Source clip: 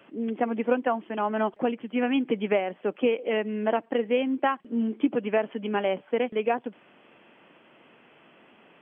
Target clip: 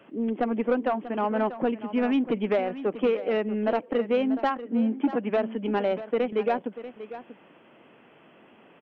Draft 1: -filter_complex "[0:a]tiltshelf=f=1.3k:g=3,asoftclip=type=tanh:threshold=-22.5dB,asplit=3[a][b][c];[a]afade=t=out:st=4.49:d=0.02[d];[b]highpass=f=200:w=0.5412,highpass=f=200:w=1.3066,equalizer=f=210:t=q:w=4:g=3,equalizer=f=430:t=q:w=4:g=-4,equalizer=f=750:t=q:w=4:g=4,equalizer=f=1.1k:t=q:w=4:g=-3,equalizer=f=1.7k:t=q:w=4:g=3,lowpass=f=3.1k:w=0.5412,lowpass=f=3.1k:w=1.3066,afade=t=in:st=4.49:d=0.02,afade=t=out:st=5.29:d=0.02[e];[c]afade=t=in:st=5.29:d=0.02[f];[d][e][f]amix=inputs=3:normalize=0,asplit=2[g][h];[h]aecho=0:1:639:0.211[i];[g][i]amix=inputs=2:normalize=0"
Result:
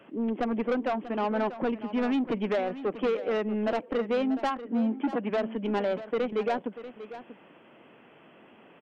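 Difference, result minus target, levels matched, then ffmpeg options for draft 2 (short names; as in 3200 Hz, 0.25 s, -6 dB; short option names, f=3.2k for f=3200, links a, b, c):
soft clip: distortion +7 dB
-filter_complex "[0:a]tiltshelf=f=1.3k:g=3,asoftclip=type=tanh:threshold=-16dB,asplit=3[a][b][c];[a]afade=t=out:st=4.49:d=0.02[d];[b]highpass=f=200:w=0.5412,highpass=f=200:w=1.3066,equalizer=f=210:t=q:w=4:g=3,equalizer=f=430:t=q:w=4:g=-4,equalizer=f=750:t=q:w=4:g=4,equalizer=f=1.1k:t=q:w=4:g=-3,equalizer=f=1.7k:t=q:w=4:g=3,lowpass=f=3.1k:w=0.5412,lowpass=f=3.1k:w=1.3066,afade=t=in:st=4.49:d=0.02,afade=t=out:st=5.29:d=0.02[e];[c]afade=t=in:st=5.29:d=0.02[f];[d][e][f]amix=inputs=3:normalize=0,asplit=2[g][h];[h]aecho=0:1:639:0.211[i];[g][i]amix=inputs=2:normalize=0"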